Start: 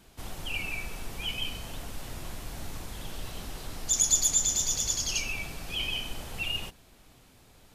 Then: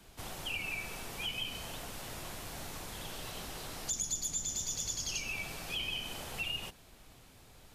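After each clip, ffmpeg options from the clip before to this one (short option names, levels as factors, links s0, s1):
-filter_complex "[0:a]equalizer=f=260:w=1.4:g=-2.5,acrossover=split=100|330[s0][s1][s2];[s0]acompressor=threshold=0.00355:ratio=4[s3];[s1]acompressor=threshold=0.00316:ratio=4[s4];[s2]acompressor=threshold=0.0178:ratio=4[s5];[s3][s4][s5]amix=inputs=3:normalize=0"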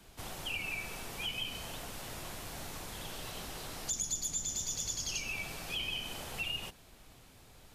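-af anull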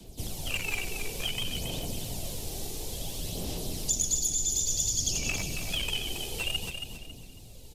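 -filter_complex "[0:a]acrossover=split=140|690|2900[s0][s1][s2][s3];[s2]acrusher=bits=5:mix=0:aa=0.5[s4];[s0][s1][s4][s3]amix=inputs=4:normalize=0,aphaser=in_gain=1:out_gain=1:delay=2.6:decay=0.46:speed=0.57:type=sinusoidal,aecho=1:1:275|550|825|1100:0.447|0.138|0.0429|0.0133,volume=2.11"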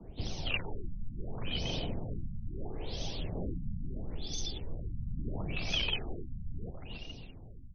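-af "afftfilt=real='re*lt(b*sr/1024,230*pow(6500/230,0.5+0.5*sin(2*PI*0.74*pts/sr)))':imag='im*lt(b*sr/1024,230*pow(6500/230,0.5+0.5*sin(2*PI*0.74*pts/sr)))':win_size=1024:overlap=0.75"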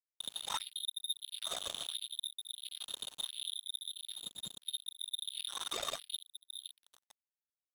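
-af "aeval=exprs='(tanh(25.1*val(0)+0.2)-tanh(0.2))/25.1':c=same,lowpass=f=3100:t=q:w=0.5098,lowpass=f=3100:t=q:w=0.6013,lowpass=f=3100:t=q:w=0.9,lowpass=f=3100:t=q:w=2.563,afreqshift=-3700,acrusher=bits=4:mix=0:aa=0.5,volume=0.794"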